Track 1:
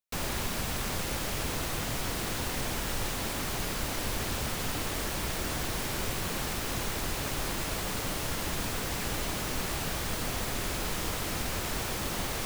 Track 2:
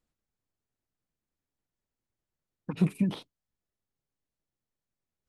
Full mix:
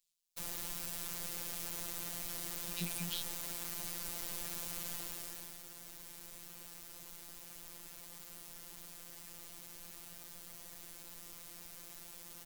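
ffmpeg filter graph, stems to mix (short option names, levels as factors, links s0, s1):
-filter_complex "[0:a]crystalizer=i=2.5:c=0,adelay=250,volume=0.224,afade=t=out:st=4.89:d=0.71:silence=0.334965[s0];[1:a]aexciter=amount=13.4:drive=7.5:freq=2400,volume=0.15[s1];[s0][s1]amix=inputs=2:normalize=0,afftfilt=real='hypot(re,im)*cos(PI*b)':imag='0':win_size=1024:overlap=0.75"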